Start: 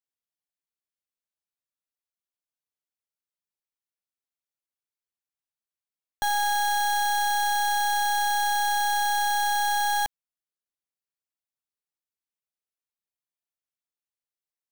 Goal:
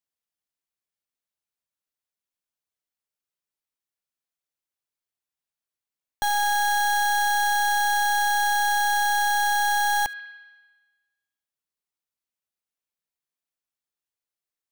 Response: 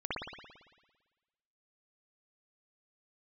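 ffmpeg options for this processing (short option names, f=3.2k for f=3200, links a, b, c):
-filter_complex "[0:a]asplit=2[a][b];[b]highpass=f=1.3k:w=0.5412,highpass=f=1.3k:w=1.3066[c];[1:a]atrim=start_sample=2205,adelay=73[d];[c][d]afir=irnorm=-1:irlink=0,volume=-18.5dB[e];[a][e]amix=inputs=2:normalize=0,volume=1.5dB"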